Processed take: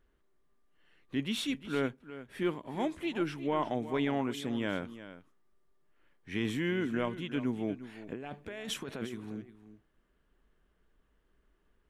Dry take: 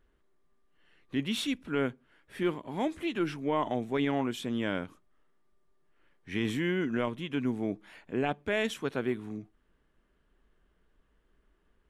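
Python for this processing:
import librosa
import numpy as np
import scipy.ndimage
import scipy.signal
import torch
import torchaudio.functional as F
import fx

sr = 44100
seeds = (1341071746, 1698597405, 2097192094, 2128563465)

p1 = fx.over_compress(x, sr, threshold_db=-37.0, ratio=-1.0, at=(8.01, 9.13), fade=0.02)
p2 = p1 + fx.echo_single(p1, sr, ms=355, db=-14.0, dry=0)
y = p2 * librosa.db_to_amplitude(-2.0)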